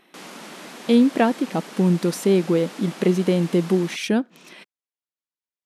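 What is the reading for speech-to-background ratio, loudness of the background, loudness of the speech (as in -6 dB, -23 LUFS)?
18.0 dB, -39.0 LUFS, -21.0 LUFS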